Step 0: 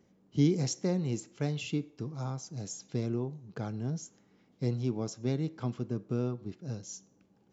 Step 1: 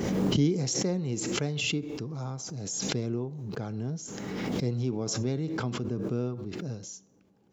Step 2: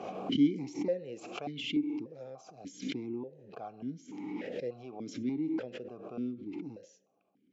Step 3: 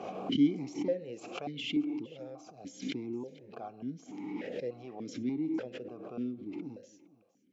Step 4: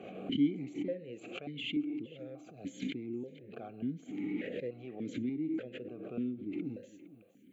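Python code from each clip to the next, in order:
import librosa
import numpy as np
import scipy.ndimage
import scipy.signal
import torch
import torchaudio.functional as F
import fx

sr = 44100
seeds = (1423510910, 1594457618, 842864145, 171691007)

y1 = fx.peak_eq(x, sr, hz=440.0, db=2.5, octaves=0.36)
y1 = fx.pre_swell(y1, sr, db_per_s=23.0)
y2 = fx.vowel_held(y1, sr, hz=3.4)
y2 = y2 * 10.0 ** (5.5 / 20.0)
y3 = y2 + 10.0 ** (-20.5 / 20.0) * np.pad(y2, (int(460 * sr / 1000.0), 0))[:len(y2)]
y4 = fx.recorder_agc(y3, sr, target_db=-25.0, rise_db_per_s=8.9, max_gain_db=30)
y4 = fx.fixed_phaser(y4, sr, hz=2300.0, stages=4)
y4 = y4 * 10.0 ** (-2.0 / 20.0)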